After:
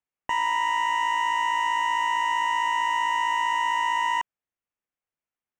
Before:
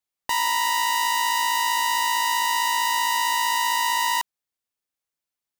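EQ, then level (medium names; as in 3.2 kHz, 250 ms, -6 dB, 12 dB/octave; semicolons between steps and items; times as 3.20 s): Butterworth band-stop 4.3 kHz, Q 1.4; distance through air 150 m; 0.0 dB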